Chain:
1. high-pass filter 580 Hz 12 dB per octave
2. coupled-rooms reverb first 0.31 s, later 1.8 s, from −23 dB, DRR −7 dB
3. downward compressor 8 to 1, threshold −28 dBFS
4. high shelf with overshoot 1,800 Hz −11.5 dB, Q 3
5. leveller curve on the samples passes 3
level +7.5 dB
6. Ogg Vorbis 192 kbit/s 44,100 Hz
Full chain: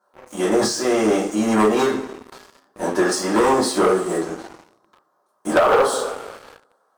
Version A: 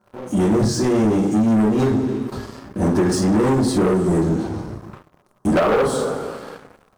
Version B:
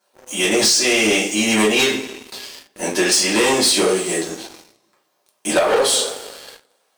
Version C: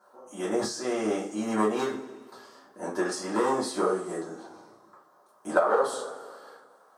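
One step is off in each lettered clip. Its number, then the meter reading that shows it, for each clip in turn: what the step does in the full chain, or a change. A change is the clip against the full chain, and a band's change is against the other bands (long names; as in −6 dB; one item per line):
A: 1, 125 Hz band +17.5 dB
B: 4, 4 kHz band +13.0 dB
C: 5, change in crest factor +9.5 dB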